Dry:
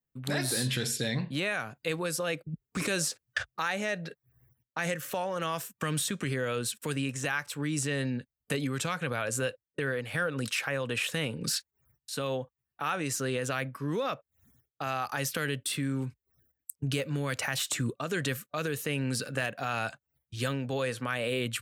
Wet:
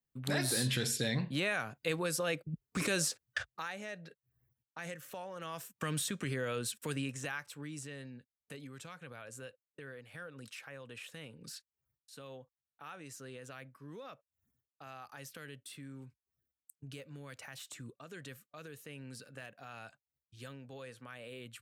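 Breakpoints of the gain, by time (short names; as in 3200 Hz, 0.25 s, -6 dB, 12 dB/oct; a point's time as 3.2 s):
3.23 s -2.5 dB
3.77 s -12 dB
5.4 s -12 dB
5.84 s -5 dB
6.97 s -5 dB
8.1 s -17 dB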